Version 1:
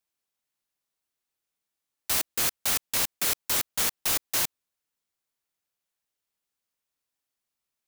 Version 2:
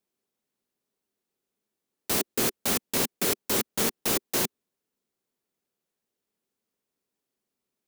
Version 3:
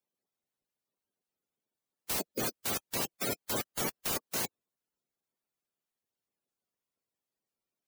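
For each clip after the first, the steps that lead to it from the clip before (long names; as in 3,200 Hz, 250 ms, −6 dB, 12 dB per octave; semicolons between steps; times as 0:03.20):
hollow resonant body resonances 230/380 Hz, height 15 dB, ringing for 25 ms; level −1.5 dB
spectral magnitudes quantised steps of 30 dB; level −6 dB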